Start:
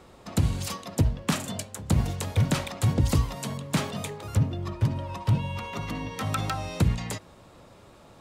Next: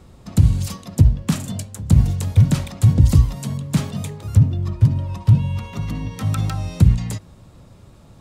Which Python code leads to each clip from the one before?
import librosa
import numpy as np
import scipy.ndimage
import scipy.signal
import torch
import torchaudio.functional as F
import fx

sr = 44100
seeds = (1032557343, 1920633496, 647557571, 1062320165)

y = fx.bass_treble(x, sr, bass_db=14, treble_db=5)
y = y * librosa.db_to_amplitude(-2.5)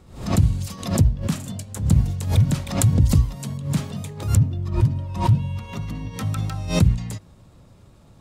y = fx.pre_swell(x, sr, db_per_s=110.0)
y = y * librosa.db_to_amplitude(-4.5)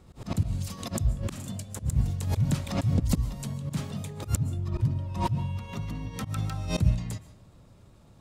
y = fx.auto_swell(x, sr, attack_ms=101.0)
y = fx.rev_freeverb(y, sr, rt60_s=0.65, hf_ratio=0.7, predelay_ms=95, drr_db=15.5)
y = y * librosa.db_to_amplitude(-4.5)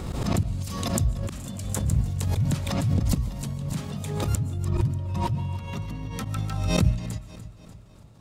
y = fx.echo_feedback(x, sr, ms=295, feedback_pct=53, wet_db=-16)
y = fx.pre_swell(y, sr, db_per_s=35.0)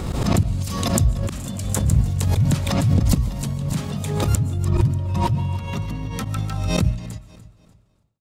y = fx.fade_out_tail(x, sr, length_s=2.29)
y = y * librosa.db_to_amplitude(6.0)